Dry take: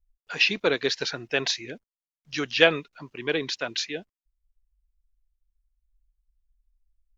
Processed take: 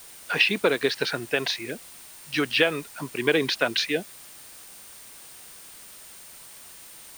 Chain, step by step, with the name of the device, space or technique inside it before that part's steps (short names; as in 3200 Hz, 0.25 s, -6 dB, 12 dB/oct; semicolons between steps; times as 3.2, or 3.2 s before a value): medium wave at night (BPF 110–3700 Hz; compressor, threshold -25 dBFS, peak gain reduction 12.5 dB; tremolo 0.29 Hz, depth 38%; whine 9000 Hz -58 dBFS; white noise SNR 18 dB); gain +8.5 dB